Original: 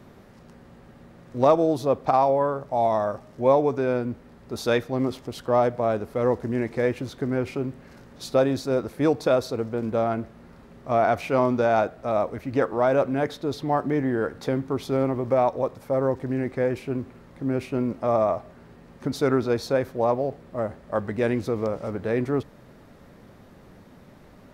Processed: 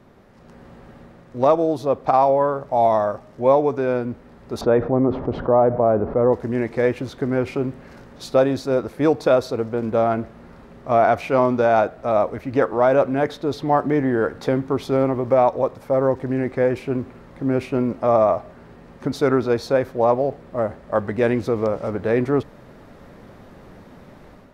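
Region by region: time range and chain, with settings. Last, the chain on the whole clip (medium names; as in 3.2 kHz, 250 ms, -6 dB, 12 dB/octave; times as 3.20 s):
4.61–6.33 s: low-pass 1 kHz + level flattener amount 50%
whole clip: tilt EQ -2 dB/octave; level rider gain up to 8 dB; bass shelf 320 Hz -11 dB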